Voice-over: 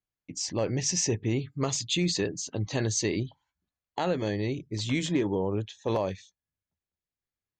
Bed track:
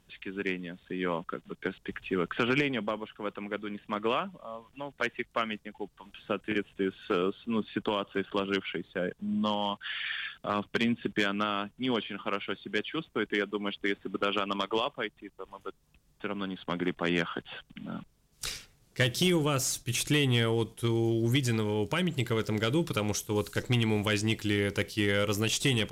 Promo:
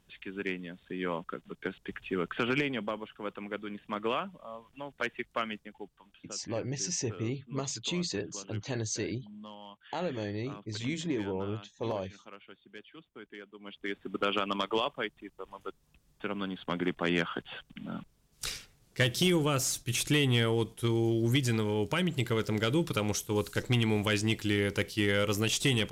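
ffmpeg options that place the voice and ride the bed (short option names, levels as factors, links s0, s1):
-filter_complex "[0:a]adelay=5950,volume=0.501[s0];[1:a]volume=5.31,afade=t=out:st=5.47:d=0.88:silence=0.177828,afade=t=in:st=13.59:d=0.66:silence=0.141254[s1];[s0][s1]amix=inputs=2:normalize=0"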